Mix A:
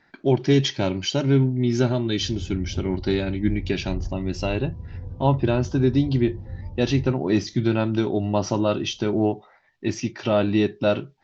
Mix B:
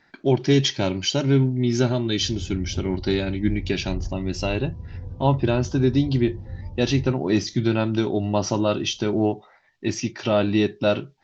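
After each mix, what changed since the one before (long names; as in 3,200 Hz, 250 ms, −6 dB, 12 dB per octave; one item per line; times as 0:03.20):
master: add high-shelf EQ 4,000 Hz +6 dB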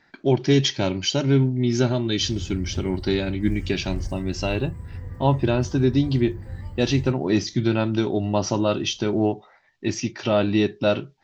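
background: remove Butterworth low-pass 940 Hz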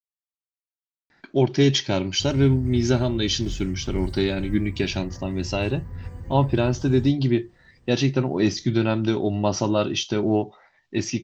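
speech: entry +1.10 s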